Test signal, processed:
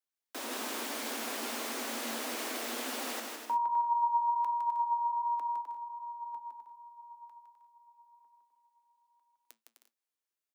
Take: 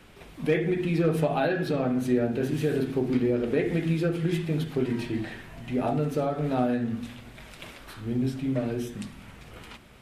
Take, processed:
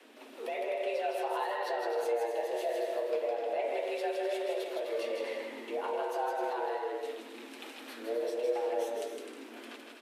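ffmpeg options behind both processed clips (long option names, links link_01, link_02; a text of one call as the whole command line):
ffmpeg -i in.wav -filter_complex "[0:a]acrossover=split=220|1700[link_01][link_02][link_03];[link_01]acompressor=threshold=-41dB:ratio=6[link_04];[link_04][link_02][link_03]amix=inputs=3:normalize=0,alimiter=limit=-22dB:level=0:latency=1:release=197,afreqshift=220,flanger=delay=6.2:depth=2.6:regen=73:speed=1.3:shape=sinusoidal,aecho=1:1:160|256|313.6|348.2|368.9:0.631|0.398|0.251|0.158|0.1" out.wav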